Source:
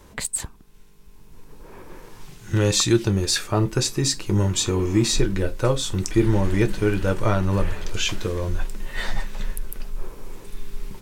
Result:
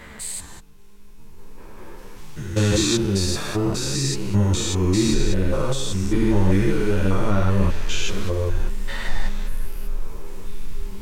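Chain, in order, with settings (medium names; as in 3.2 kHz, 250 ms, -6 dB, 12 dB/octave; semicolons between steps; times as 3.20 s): spectrogram pixelated in time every 200 ms; three-phase chorus; trim +6 dB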